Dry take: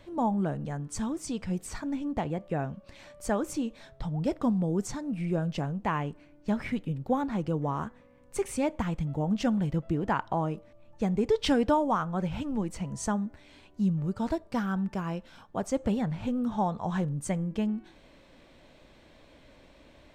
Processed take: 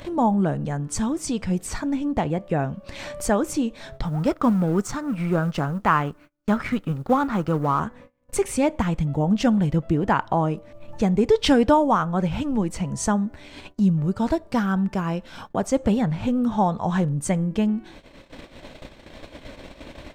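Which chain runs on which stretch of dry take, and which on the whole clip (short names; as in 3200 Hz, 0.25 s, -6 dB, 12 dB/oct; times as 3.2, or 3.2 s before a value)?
4.04–7.8 G.711 law mismatch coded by A + bell 1300 Hz +12 dB 0.46 oct
whole clip: gate -53 dBFS, range -32 dB; upward compressor, threshold -32 dBFS; gain +7.5 dB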